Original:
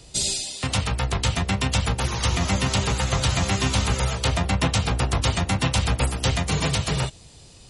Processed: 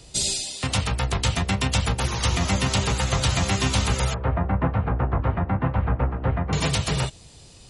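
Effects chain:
0:04.14–0:06.53: low-pass filter 1,600 Hz 24 dB per octave

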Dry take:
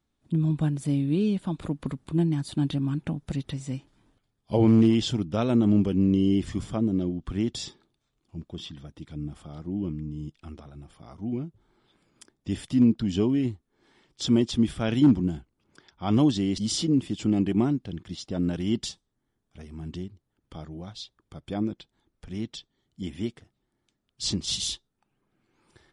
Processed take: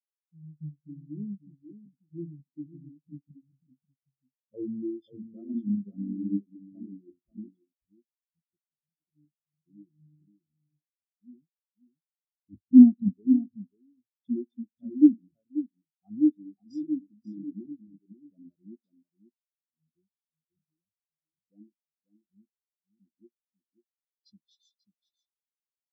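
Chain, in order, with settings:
adaptive Wiener filter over 15 samples
0:12.53–0:13.13: leveller curve on the samples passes 5
low-shelf EQ 210 Hz −8 dB
double-tracking delay 20 ms −11.5 dB
spring reverb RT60 1.1 s, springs 59 ms, DRR 15.5 dB
automatic gain control gain up to 9 dB
low-pass that shuts in the quiet parts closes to 420 Hz, open at −15.5 dBFS
downward compressor 1.5 to 1, threshold −28 dBFS, peak gain reduction 8 dB
high-shelf EQ 4,900 Hz +11 dB
on a send: single-tap delay 538 ms −3.5 dB
on the sum: every bin expanded away from the loudest bin 4 to 1

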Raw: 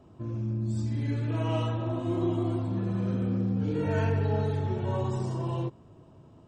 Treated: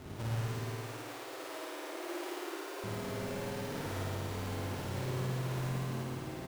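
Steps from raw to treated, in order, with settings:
each half-wave held at its own peak
echo with shifted repeats 170 ms, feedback 54%, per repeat +46 Hz, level −8 dB
brickwall limiter −26.5 dBFS, peak gain reduction 13 dB
downward compressor 3 to 1, threshold −45 dBFS, peak gain reduction 12 dB
0:00.59–0:02.84: Chebyshev high-pass filter 290 Hz, order 8
flutter between parallel walls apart 9.2 metres, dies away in 1.4 s
feedback echo at a low word length 115 ms, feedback 55%, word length 10 bits, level −7 dB
level +2 dB

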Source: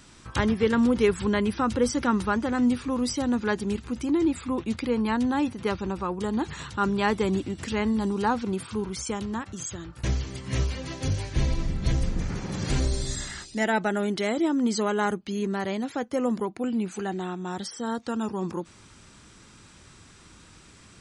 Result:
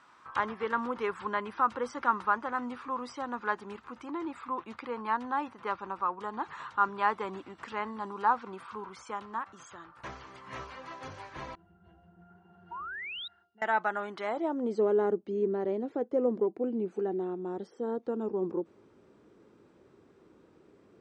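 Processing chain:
band-pass filter sweep 1,100 Hz → 420 Hz, 0:14.20–0:14.83
0:11.55–0:13.62: resonances in every octave F, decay 0.22 s
0:12.71–0:13.28: sound drawn into the spectrogram rise 900–3,900 Hz −43 dBFS
level +3.5 dB

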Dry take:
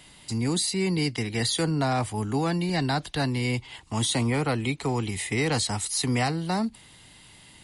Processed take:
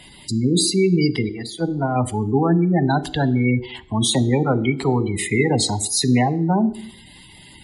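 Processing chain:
gate on every frequency bin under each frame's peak −15 dB strong
0:01.29–0:01.96: noise gate −24 dBFS, range −15 dB
on a send: parametric band 340 Hz +13 dB 0.89 octaves + convolution reverb RT60 0.70 s, pre-delay 3 ms, DRR 12 dB
on the sum: level +7.5 dB

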